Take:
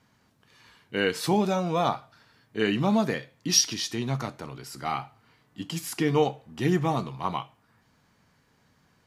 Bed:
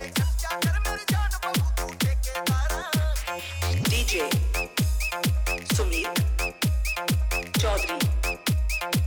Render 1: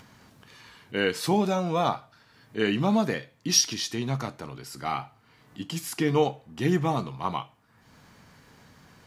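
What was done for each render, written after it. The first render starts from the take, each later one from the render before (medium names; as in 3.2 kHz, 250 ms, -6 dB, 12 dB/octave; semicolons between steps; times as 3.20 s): upward compressor, threshold -43 dBFS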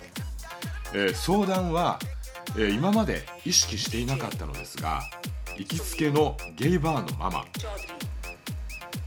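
add bed -11 dB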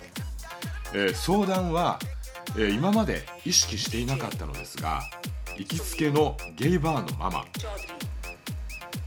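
no audible change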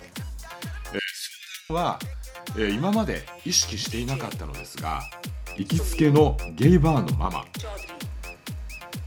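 0.99–1.70 s: steep high-pass 1.6 kHz 72 dB/octave; 5.58–7.26 s: bass shelf 470 Hz +9 dB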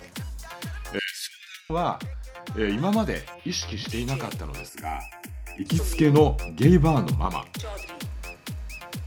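1.27–2.78 s: treble shelf 4.2 kHz -10.5 dB; 3.34–3.89 s: boxcar filter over 6 samples; 4.69–5.66 s: static phaser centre 770 Hz, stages 8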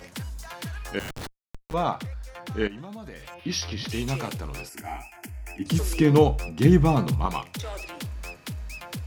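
0.99–1.74 s: Schmitt trigger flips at -29 dBFS; 2.67–3.35 s: compression 12:1, threshold -36 dBFS; 4.82–5.23 s: detune thickener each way 40 cents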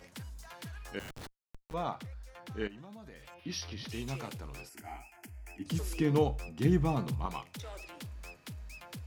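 trim -10 dB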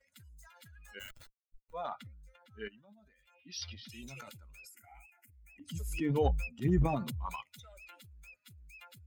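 expander on every frequency bin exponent 2; transient shaper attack -2 dB, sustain +11 dB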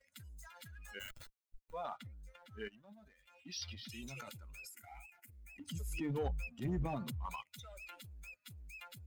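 compression 1.5:1, threshold -55 dBFS, peak gain reduction 11 dB; waveshaping leveller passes 1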